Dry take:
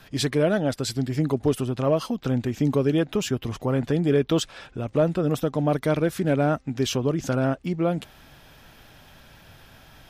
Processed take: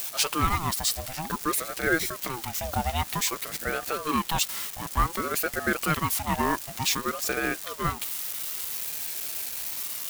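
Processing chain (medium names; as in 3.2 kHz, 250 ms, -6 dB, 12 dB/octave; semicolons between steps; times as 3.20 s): zero-crossing glitches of -29.5 dBFS; high-pass 520 Hz 12 dB/octave; treble shelf 5 kHz +6 dB; in parallel at -7 dB: word length cut 6-bit, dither triangular; on the sum: ring modulator with a swept carrier 660 Hz, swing 50%, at 0.54 Hz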